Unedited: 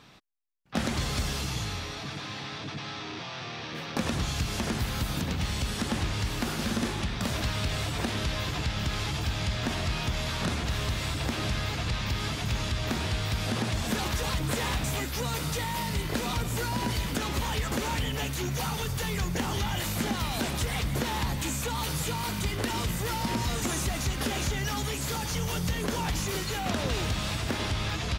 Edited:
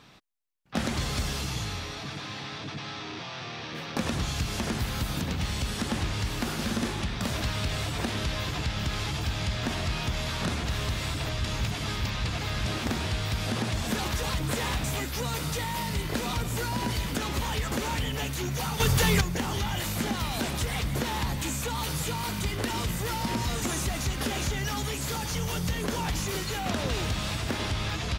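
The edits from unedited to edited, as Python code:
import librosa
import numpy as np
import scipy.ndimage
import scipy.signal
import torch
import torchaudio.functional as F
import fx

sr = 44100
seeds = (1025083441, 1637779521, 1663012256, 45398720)

y = fx.edit(x, sr, fx.reverse_span(start_s=11.26, length_s=1.64),
    fx.clip_gain(start_s=18.8, length_s=0.41, db=8.5), tone=tone)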